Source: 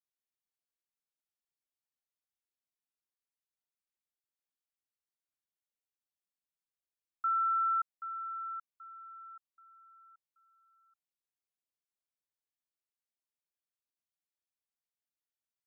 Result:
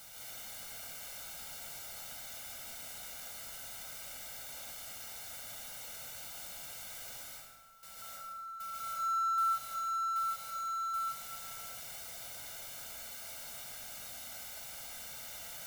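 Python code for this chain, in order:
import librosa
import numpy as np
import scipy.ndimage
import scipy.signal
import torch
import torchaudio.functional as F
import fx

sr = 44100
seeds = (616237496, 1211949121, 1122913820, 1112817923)

p1 = x + 0.5 * 10.0 ** (-44.0 / 20.0) * np.sign(x)
p2 = p1 + 0.77 * np.pad(p1, (int(1.4 * sr / 1000.0), 0))[:len(p1)]
p3 = fx.over_compress(p2, sr, threshold_db=-40.0, ratio=-0.5)
p4 = p3 + fx.echo_single(p3, sr, ms=644, db=-20.5, dry=0)
p5 = fx.rev_plate(p4, sr, seeds[0], rt60_s=1.4, hf_ratio=0.7, predelay_ms=120, drr_db=-5.5)
y = p5 * librosa.db_to_amplitude(-5.0)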